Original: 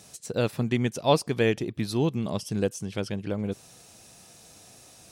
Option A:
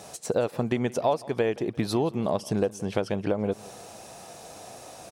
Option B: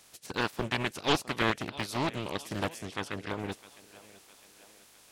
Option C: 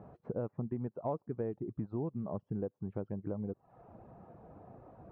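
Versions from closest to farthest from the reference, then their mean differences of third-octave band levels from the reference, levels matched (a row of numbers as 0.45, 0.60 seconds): A, B, C; 5.0, 7.5, 12.0 decibels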